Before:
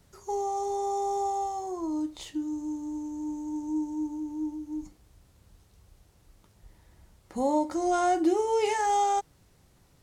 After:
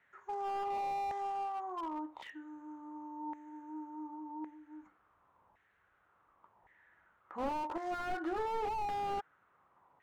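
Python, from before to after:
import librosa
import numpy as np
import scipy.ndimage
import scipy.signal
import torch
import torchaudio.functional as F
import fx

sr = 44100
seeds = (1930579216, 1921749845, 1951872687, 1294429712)

y = fx.wiener(x, sr, points=9)
y = fx.filter_lfo_bandpass(y, sr, shape='saw_down', hz=0.9, low_hz=910.0, high_hz=1900.0, q=4.2)
y = fx.slew_limit(y, sr, full_power_hz=4.5)
y = y * 10.0 ** (10.0 / 20.0)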